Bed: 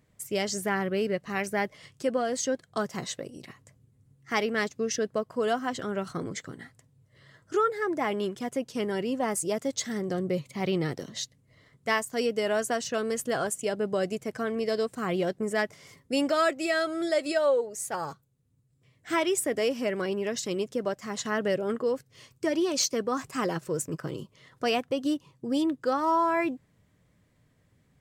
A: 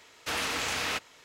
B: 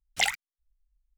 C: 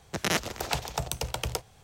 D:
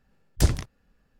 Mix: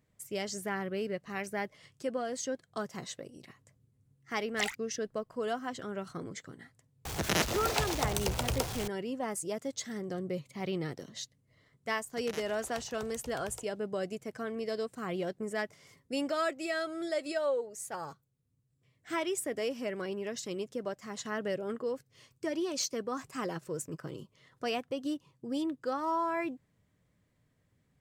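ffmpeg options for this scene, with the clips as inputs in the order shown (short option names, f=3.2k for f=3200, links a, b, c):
-filter_complex "[3:a]asplit=2[a][b];[0:a]volume=-7dB[c];[a]aeval=exprs='val(0)+0.5*0.0335*sgn(val(0))':c=same[d];[2:a]atrim=end=1.17,asetpts=PTS-STARTPTS,volume=-9dB,afade=t=in:d=0.004:c=hsin,afade=t=out:st=1.166:d=0.004:c=hsin,adelay=4400[e];[d]atrim=end=1.83,asetpts=PTS-STARTPTS,volume=-3.5dB,afade=t=in:d=0.004:c=hsin,afade=t=out:st=1.826:d=0.004:c=hsin,adelay=7050[f];[b]atrim=end=1.83,asetpts=PTS-STARTPTS,volume=-17dB,afade=t=in:d=0.004:c=hsin,afade=t=out:st=1.826:d=0.004:c=hsin,adelay=12030[g];[c][e][f][g]amix=inputs=4:normalize=0"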